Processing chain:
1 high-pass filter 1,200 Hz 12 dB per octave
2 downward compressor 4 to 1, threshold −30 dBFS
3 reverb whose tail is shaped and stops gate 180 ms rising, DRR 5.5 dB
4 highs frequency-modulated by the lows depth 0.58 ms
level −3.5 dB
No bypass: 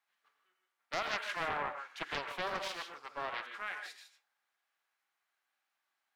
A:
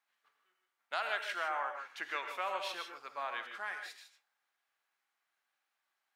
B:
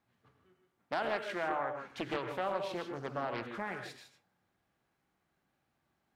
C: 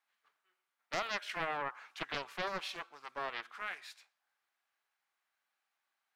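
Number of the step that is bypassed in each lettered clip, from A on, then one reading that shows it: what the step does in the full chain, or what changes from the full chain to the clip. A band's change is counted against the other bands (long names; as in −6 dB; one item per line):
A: 4, 250 Hz band −7.0 dB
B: 1, 250 Hz band +10.5 dB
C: 3, change in integrated loudness −1.0 LU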